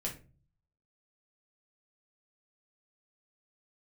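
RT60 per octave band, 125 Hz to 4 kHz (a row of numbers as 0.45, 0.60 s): 0.80, 0.60, 0.40, 0.30, 0.30, 0.25 s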